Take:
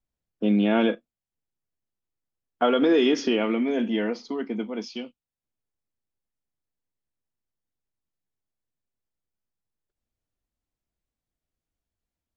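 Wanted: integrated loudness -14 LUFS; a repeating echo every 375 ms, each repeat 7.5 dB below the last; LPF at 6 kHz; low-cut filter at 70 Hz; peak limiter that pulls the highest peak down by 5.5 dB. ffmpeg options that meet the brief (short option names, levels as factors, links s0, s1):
-af "highpass=70,lowpass=6000,alimiter=limit=0.168:level=0:latency=1,aecho=1:1:375|750|1125|1500|1875:0.422|0.177|0.0744|0.0312|0.0131,volume=3.98"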